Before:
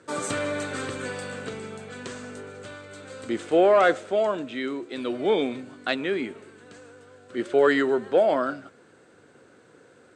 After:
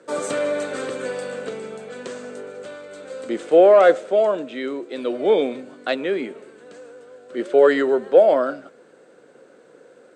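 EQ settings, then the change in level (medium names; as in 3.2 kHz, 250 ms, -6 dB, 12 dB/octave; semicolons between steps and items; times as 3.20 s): high-pass 150 Hz 24 dB/octave; peaking EQ 530 Hz +9 dB 0.77 oct; 0.0 dB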